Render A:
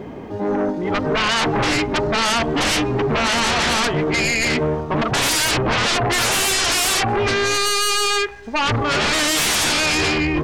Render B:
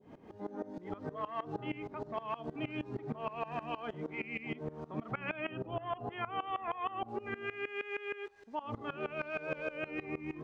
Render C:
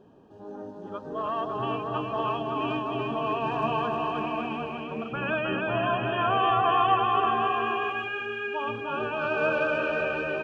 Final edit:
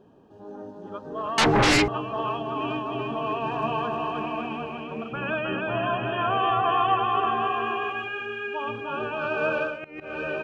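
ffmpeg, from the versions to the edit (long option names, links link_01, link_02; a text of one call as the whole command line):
ffmpeg -i take0.wav -i take1.wav -i take2.wav -filter_complex "[2:a]asplit=3[link_01][link_02][link_03];[link_01]atrim=end=1.382[link_04];[0:a]atrim=start=1.378:end=1.882[link_05];[link_02]atrim=start=1.878:end=9.83[link_06];[1:a]atrim=start=9.59:end=10.24[link_07];[link_03]atrim=start=10[link_08];[link_04][link_05]acrossfade=duration=0.004:curve1=hsin:curve2=hsin[link_09];[link_09][link_06]acrossfade=duration=0.004:curve1=hsin:curve2=hsin[link_10];[link_10][link_07]acrossfade=duration=0.24:curve1=tri:curve2=tri[link_11];[link_11][link_08]acrossfade=duration=0.24:curve1=tri:curve2=tri" out.wav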